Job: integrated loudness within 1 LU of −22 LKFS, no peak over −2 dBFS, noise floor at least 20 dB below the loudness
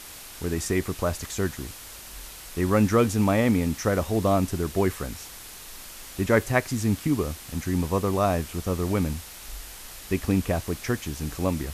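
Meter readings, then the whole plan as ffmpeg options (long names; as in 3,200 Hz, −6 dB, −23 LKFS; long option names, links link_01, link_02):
background noise floor −43 dBFS; target noise floor −46 dBFS; integrated loudness −26.0 LKFS; sample peak −7.0 dBFS; target loudness −22.0 LKFS
→ -af "afftdn=noise_reduction=6:noise_floor=-43"
-af "volume=4dB"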